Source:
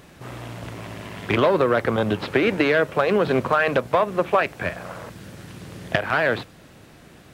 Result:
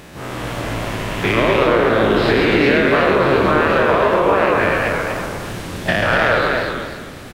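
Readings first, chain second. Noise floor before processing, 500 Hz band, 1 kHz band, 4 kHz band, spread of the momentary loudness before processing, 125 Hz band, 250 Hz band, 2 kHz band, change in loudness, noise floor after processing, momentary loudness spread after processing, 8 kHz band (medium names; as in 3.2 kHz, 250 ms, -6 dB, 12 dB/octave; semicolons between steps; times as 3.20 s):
-48 dBFS, +6.0 dB, +7.0 dB, +8.5 dB, 19 LU, +6.5 dB, +7.0 dB, +7.5 dB, +5.5 dB, -33 dBFS, 12 LU, no reading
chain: every event in the spectrogram widened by 120 ms; peaking EQ 140 Hz -2.5 dB 0.9 oct; compression, threshold -19 dBFS, peak gain reduction 10.5 dB; frequency-shifting echo 137 ms, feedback 37%, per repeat -68 Hz, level -3 dB; modulated delay 242 ms, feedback 34%, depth 152 cents, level -3.5 dB; trim +4.5 dB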